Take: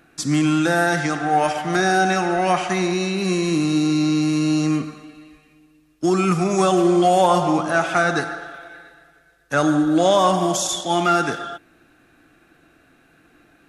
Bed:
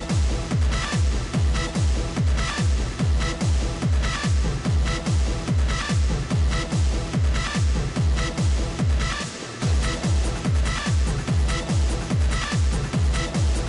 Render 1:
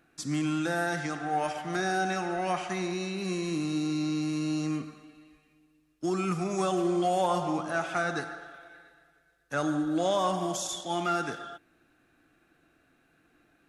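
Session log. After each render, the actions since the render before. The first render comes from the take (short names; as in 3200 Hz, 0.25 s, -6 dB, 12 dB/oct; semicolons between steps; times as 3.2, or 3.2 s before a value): gain -11 dB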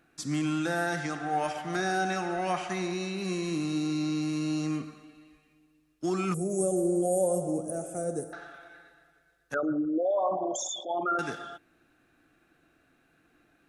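6.34–8.33 EQ curve 340 Hz 0 dB, 520 Hz +7 dB, 960 Hz -21 dB, 4100 Hz -27 dB, 8600 Hz +13 dB; 9.54–11.19 formant sharpening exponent 3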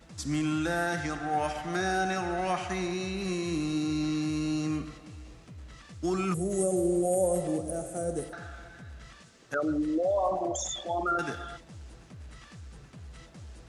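add bed -25 dB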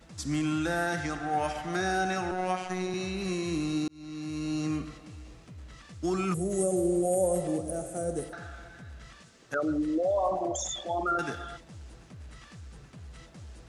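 2.31–2.94 robotiser 184 Hz; 3.88–4.65 fade in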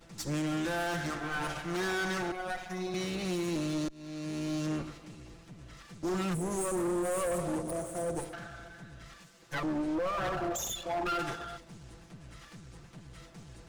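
minimum comb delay 5.9 ms; hard clip -29 dBFS, distortion -11 dB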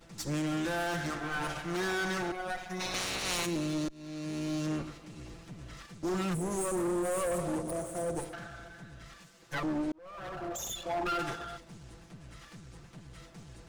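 2.79–3.45 spectral limiter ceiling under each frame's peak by 26 dB; 5.16–5.86 gain +3.5 dB; 9.92–10.88 fade in linear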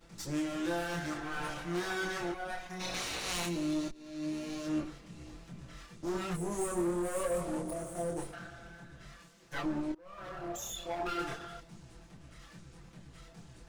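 chorus voices 6, 0.46 Hz, delay 26 ms, depth 3.4 ms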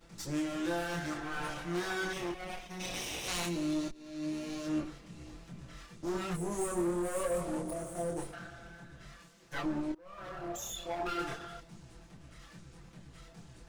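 2.13–3.28 minimum comb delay 0.35 ms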